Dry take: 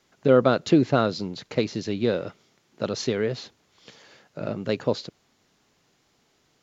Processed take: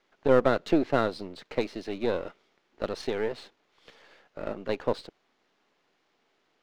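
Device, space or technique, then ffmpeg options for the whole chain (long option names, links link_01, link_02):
crystal radio: -af "highpass=310,lowpass=3300,aeval=exprs='if(lt(val(0),0),0.447*val(0),val(0))':channel_layout=same"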